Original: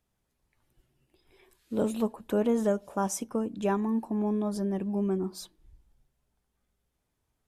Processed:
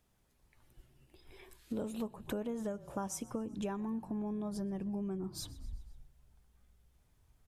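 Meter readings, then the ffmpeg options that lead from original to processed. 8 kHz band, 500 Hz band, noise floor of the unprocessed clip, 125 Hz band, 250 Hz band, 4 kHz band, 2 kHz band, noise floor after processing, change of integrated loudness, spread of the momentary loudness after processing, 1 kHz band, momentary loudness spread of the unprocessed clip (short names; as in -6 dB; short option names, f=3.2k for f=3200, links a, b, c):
-7.0 dB, -11.5 dB, -80 dBFS, -7.5 dB, -9.0 dB, -3.5 dB, -9.0 dB, -72 dBFS, -10.0 dB, 13 LU, -10.5 dB, 6 LU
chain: -filter_complex "[0:a]asplit=5[a][b][c][d][e];[b]adelay=127,afreqshift=-36,volume=-24dB[f];[c]adelay=254,afreqshift=-72,volume=-29.2dB[g];[d]adelay=381,afreqshift=-108,volume=-34.4dB[h];[e]adelay=508,afreqshift=-144,volume=-39.6dB[i];[a][f][g][h][i]amix=inputs=5:normalize=0,asubboost=boost=2.5:cutoff=160,acompressor=threshold=-41dB:ratio=6,volume=4.5dB"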